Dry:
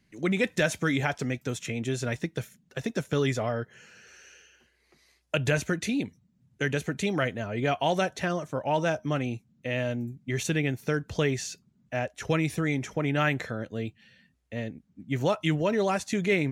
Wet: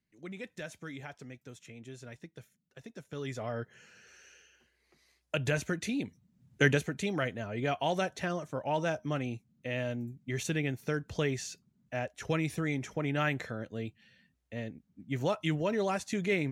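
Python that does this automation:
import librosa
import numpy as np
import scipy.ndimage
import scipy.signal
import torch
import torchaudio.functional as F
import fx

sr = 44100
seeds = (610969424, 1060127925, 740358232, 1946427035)

y = fx.gain(x, sr, db=fx.line((3.03, -17.0), (3.6, -5.0), (6.0, -5.0), (6.67, 4.0), (6.9, -5.0)))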